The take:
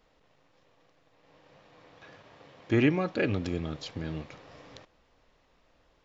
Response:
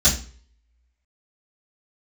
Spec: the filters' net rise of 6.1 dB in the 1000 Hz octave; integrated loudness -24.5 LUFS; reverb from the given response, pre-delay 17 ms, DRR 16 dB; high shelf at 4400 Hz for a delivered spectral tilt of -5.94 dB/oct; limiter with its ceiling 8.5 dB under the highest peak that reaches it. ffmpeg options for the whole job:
-filter_complex "[0:a]equalizer=f=1k:t=o:g=8.5,highshelf=f=4.4k:g=-5,alimiter=limit=-19.5dB:level=0:latency=1,asplit=2[a][b];[1:a]atrim=start_sample=2205,adelay=17[c];[b][c]afir=irnorm=-1:irlink=0,volume=-32dB[d];[a][d]amix=inputs=2:normalize=0,volume=8.5dB"

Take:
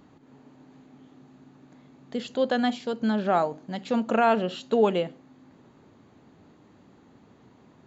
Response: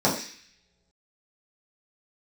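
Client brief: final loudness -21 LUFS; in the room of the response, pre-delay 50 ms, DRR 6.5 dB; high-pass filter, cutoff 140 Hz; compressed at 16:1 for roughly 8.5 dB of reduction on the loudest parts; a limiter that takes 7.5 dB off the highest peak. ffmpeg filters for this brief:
-filter_complex "[0:a]highpass=140,acompressor=threshold=-24dB:ratio=16,alimiter=limit=-23.5dB:level=0:latency=1,asplit=2[a][b];[1:a]atrim=start_sample=2205,adelay=50[c];[b][c]afir=irnorm=-1:irlink=0,volume=-22.5dB[d];[a][d]amix=inputs=2:normalize=0,volume=10dB"

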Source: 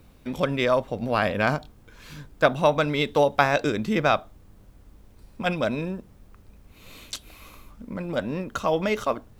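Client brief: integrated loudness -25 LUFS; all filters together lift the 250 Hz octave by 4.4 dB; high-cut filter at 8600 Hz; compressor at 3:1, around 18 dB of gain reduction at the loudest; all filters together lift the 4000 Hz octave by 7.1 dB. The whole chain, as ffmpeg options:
-af "lowpass=8.6k,equalizer=f=250:t=o:g=5.5,equalizer=f=4k:t=o:g=8.5,acompressor=threshold=-38dB:ratio=3,volume=13dB"

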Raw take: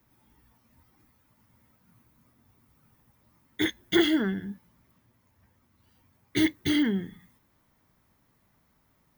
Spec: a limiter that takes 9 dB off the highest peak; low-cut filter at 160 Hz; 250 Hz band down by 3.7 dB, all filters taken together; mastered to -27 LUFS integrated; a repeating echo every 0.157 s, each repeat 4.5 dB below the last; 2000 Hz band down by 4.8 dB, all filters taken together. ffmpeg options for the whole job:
-af "highpass=160,equalizer=f=250:t=o:g=-4.5,equalizer=f=2k:t=o:g=-5.5,alimiter=limit=-22dB:level=0:latency=1,aecho=1:1:157|314|471|628|785|942|1099|1256|1413:0.596|0.357|0.214|0.129|0.0772|0.0463|0.0278|0.0167|0.01,volume=6dB"

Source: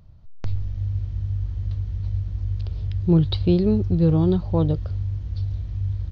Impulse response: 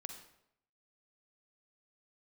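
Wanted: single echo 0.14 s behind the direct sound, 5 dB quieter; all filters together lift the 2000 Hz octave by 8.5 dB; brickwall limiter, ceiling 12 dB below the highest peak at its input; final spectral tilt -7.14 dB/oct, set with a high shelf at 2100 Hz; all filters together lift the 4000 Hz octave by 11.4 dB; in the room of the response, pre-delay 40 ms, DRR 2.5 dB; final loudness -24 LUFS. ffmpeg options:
-filter_complex "[0:a]equalizer=f=2k:t=o:g=4.5,highshelf=f=2.1k:g=8,equalizer=f=4k:t=o:g=4.5,alimiter=limit=-16.5dB:level=0:latency=1,aecho=1:1:140:0.562,asplit=2[a][b];[1:a]atrim=start_sample=2205,adelay=40[c];[b][c]afir=irnorm=-1:irlink=0,volume=1dB[d];[a][d]amix=inputs=2:normalize=0,volume=-1.5dB"

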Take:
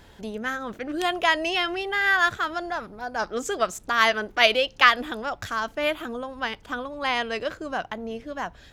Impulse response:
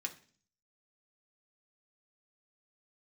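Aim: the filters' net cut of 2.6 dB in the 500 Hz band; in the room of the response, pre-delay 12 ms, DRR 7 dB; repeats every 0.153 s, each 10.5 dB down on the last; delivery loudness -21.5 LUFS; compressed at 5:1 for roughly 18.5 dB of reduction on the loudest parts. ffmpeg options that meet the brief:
-filter_complex "[0:a]equalizer=f=500:t=o:g=-3.5,acompressor=threshold=-32dB:ratio=5,aecho=1:1:153|306|459:0.299|0.0896|0.0269,asplit=2[a][b];[1:a]atrim=start_sample=2205,adelay=12[c];[b][c]afir=irnorm=-1:irlink=0,volume=-6.5dB[d];[a][d]amix=inputs=2:normalize=0,volume=13dB"

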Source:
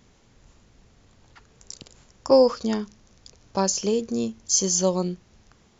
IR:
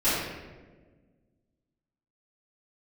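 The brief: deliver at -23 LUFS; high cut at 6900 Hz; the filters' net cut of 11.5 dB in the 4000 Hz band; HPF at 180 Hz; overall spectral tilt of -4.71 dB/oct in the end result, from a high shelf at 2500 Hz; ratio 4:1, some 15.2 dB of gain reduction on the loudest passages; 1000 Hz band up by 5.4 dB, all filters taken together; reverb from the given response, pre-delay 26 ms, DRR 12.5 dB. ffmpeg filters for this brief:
-filter_complex "[0:a]highpass=180,lowpass=6.9k,equalizer=f=1k:t=o:g=8,highshelf=f=2.5k:g=-8.5,equalizer=f=4k:t=o:g=-6,acompressor=threshold=-29dB:ratio=4,asplit=2[a][b];[1:a]atrim=start_sample=2205,adelay=26[c];[b][c]afir=irnorm=-1:irlink=0,volume=-27dB[d];[a][d]amix=inputs=2:normalize=0,volume=10.5dB"

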